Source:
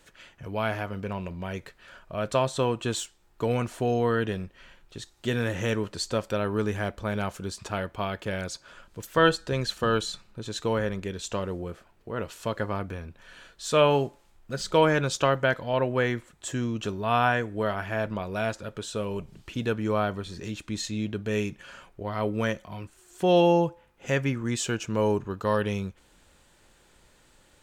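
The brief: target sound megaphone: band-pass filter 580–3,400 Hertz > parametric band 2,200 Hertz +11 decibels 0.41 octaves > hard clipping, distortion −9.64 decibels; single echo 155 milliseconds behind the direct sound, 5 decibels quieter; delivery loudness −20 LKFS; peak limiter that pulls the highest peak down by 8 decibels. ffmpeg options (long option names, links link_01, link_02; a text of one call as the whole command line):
ffmpeg -i in.wav -af "alimiter=limit=-15.5dB:level=0:latency=1,highpass=580,lowpass=3400,equalizer=frequency=2200:width_type=o:width=0.41:gain=11,aecho=1:1:155:0.562,asoftclip=type=hard:threshold=-26dB,volume=13.5dB" out.wav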